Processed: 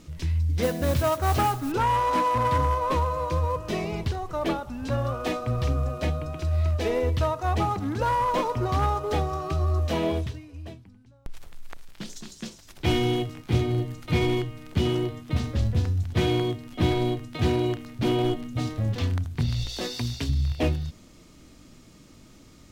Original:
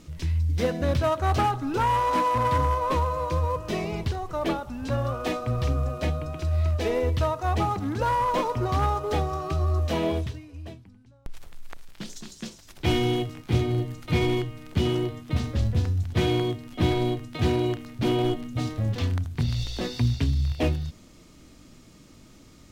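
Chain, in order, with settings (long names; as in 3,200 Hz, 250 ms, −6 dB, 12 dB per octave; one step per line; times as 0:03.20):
0:00.62–0:01.72: noise that follows the level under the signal 17 dB
0:19.69–0:20.29: bass and treble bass −8 dB, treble +6 dB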